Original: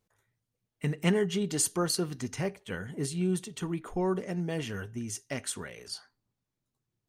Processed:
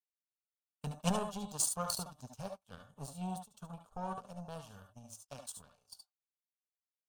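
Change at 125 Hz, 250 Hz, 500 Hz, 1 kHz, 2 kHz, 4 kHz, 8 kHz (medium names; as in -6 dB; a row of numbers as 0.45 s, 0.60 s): -10.5 dB, -11.5 dB, -12.5 dB, -1.5 dB, -15.0 dB, -8.0 dB, -5.0 dB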